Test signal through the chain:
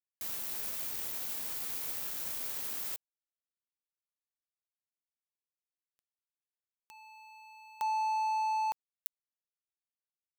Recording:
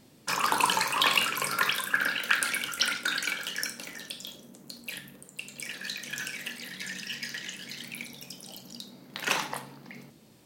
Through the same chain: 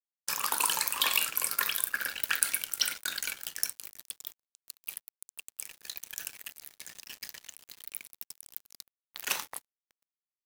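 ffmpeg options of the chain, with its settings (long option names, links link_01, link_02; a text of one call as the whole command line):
ffmpeg -i in.wav -af "aemphasis=mode=production:type=bsi,aeval=exprs='sgn(val(0))*max(abs(val(0))-0.0251,0)':channel_layout=same,volume=-5.5dB" out.wav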